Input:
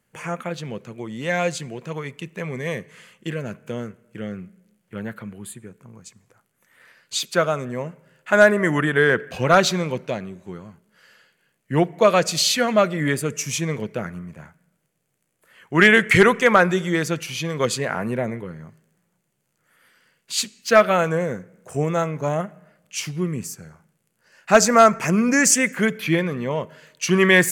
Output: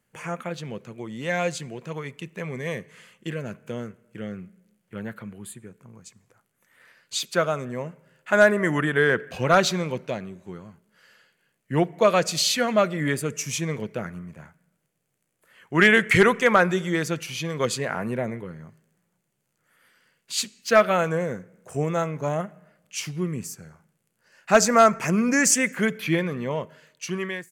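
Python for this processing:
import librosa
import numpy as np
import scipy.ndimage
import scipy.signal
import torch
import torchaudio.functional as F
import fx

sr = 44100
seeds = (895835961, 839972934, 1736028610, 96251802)

y = fx.fade_out_tail(x, sr, length_s=0.97)
y = F.gain(torch.from_numpy(y), -3.0).numpy()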